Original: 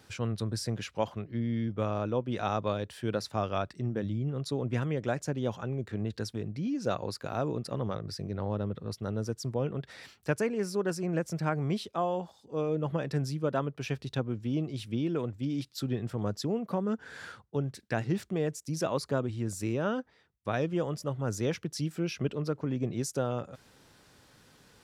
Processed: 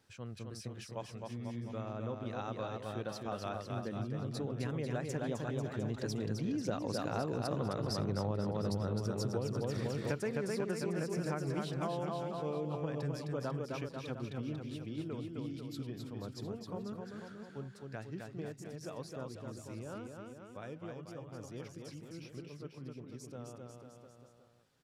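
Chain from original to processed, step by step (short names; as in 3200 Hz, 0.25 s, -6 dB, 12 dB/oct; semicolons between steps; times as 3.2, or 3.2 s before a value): Doppler pass-by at 8.4, 9 m/s, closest 4 m; bouncing-ball echo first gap 0.26 s, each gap 0.9×, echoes 5; compressor 12:1, threshold -44 dBFS, peak gain reduction 17.5 dB; gain +12.5 dB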